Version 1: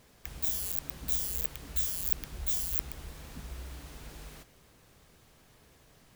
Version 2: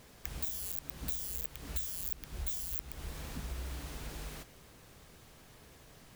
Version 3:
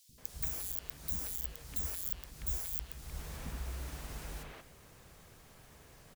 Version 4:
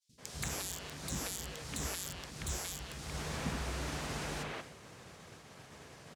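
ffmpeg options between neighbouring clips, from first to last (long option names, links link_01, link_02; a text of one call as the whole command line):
ffmpeg -i in.wav -af "acompressor=threshold=-39dB:ratio=3,volume=3.5dB" out.wav
ffmpeg -i in.wav -filter_complex "[0:a]acrossover=split=280|3700[link_01][link_02][link_03];[link_01]adelay=90[link_04];[link_02]adelay=180[link_05];[link_04][link_05][link_03]amix=inputs=3:normalize=0" out.wav
ffmpeg -i in.wav -af "highpass=110,lowpass=7400,agate=range=-33dB:threshold=-56dB:ratio=3:detection=peak,volume=9.5dB" out.wav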